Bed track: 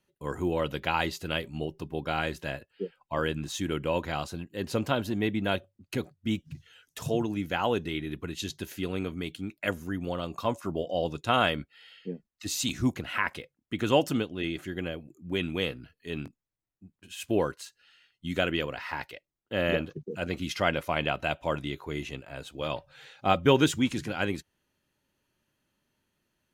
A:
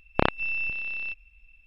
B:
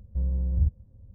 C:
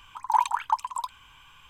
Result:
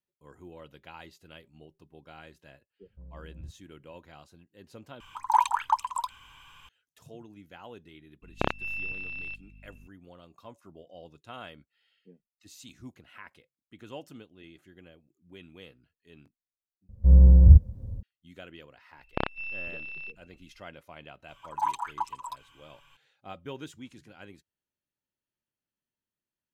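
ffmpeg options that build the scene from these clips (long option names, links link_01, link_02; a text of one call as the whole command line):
ffmpeg -i bed.wav -i cue0.wav -i cue1.wav -i cue2.wav -filter_complex "[2:a]asplit=2[link_01][link_02];[3:a]asplit=2[link_03][link_04];[1:a]asplit=2[link_05][link_06];[0:a]volume=-19dB[link_07];[link_01]lowshelf=frequency=91:gain=-12[link_08];[link_05]aeval=exprs='val(0)+0.00501*(sin(2*PI*50*n/s)+sin(2*PI*2*50*n/s)/2+sin(2*PI*3*50*n/s)/3+sin(2*PI*4*50*n/s)/4+sin(2*PI*5*50*n/s)/5)':channel_layout=same[link_09];[link_02]dynaudnorm=framelen=120:gausssize=3:maxgain=14.5dB[link_10];[link_04]aecho=1:1:7.1:0.89[link_11];[link_07]asplit=3[link_12][link_13][link_14];[link_12]atrim=end=5.004[link_15];[link_03]atrim=end=1.69[link_16];[link_13]atrim=start=6.686:end=16.894[link_17];[link_10]atrim=end=1.14,asetpts=PTS-STARTPTS,volume=-1dB[link_18];[link_14]atrim=start=18.026[link_19];[link_08]atrim=end=1.14,asetpts=PTS-STARTPTS,volume=-13.5dB,afade=type=in:duration=0.004:curve=hsin,afade=type=out:start_time=1.136:duration=0.004:curve=hsin,adelay=2820[link_20];[link_09]atrim=end=1.66,asetpts=PTS-STARTPTS,volume=-5.5dB,afade=type=in:duration=0.004:curve=hsin,afade=type=out:start_time=1.656:duration=0.004:curve=hsin,adelay=8220[link_21];[link_06]atrim=end=1.66,asetpts=PTS-STARTPTS,volume=-7.5dB,afade=type=in:duration=0.004:curve=hsin,afade=type=out:start_time=1.656:duration=0.004:curve=hsin,adelay=18980[link_22];[link_11]atrim=end=1.69,asetpts=PTS-STARTPTS,volume=-9.5dB,afade=type=in:duration=0.004:curve=hsin,afade=type=out:start_time=1.686:duration=0.004:curve=hsin,adelay=21280[link_23];[link_15][link_16]acrossfade=duration=0.004:curve1=hsin:curve2=hsin[link_24];[link_24][link_17]acrossfade=duration=0.004:curve1=hsin:curve2=hsin[link_25];[link_25][link_18]acrossfade=duration=0.004:curve1=hsin:curve2=hsin[link_26];[link_26][link_19]acrossfade=duration=0.004:curve1=hsin:curve2=hsin[link_27];[link_27][link_20][link_21][link_22][link_23]amix=inputs=5:normalize=0" out.wav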